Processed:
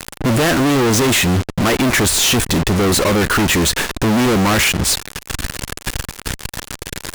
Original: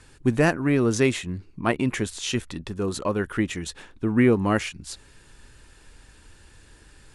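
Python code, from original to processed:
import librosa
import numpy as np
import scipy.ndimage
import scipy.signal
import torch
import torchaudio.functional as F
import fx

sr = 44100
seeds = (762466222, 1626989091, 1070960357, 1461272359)

y = fx.leveller(x, sr, passes=5)
y = fx.fuzz(y, sr, gain_db=41.0, gate_db=-49.0)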